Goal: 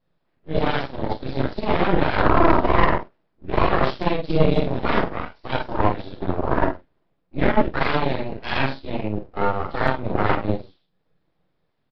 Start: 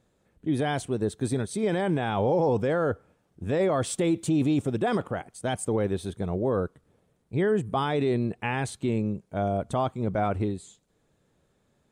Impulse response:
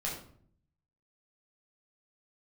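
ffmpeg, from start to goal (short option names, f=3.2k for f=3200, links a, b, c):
-filter_complex "[0:a]aecho=1:1:48|61:0.501|0.282,asplit=2[a][b];[b]volume=29.5dB,asoftclip=hard,volume=-29.5dB,volume=-9dB[c];[a][c]amix=inputs=2:normalize=0,asplit=2[d][e];[e]adelay=44,volume=-7dB[f];[d][f]amix=inputs=2:normalize=0[g];[1:a]atrim=start_sample=2205,atrim=end_sample=3528[h];[g][h]afir=irnorm=-1:irlink=0,aeval=exprs='0.501*(cos(1*acos(clip(val(0)/0.501,-1,1)))-cos(1*PI/2))+0.0501*(cos(2*acos(clip(val(0)/0.501,-1,1)))-cos(2*PI/2))+0.01*(cos(6*acos(clip(val(0)/0.501,-1,1)))-cos(6*PI/2))+0.0562*(cos(7*acos(clip(val(0)/0.501,-1,1)))-cos(7*PI/2))':c=same,aresample=11025,aeval=exprs='abs(val(0))':c=same,aresample=44100,volume=3dB" -ar 48000 -c:a aac -b:a 96k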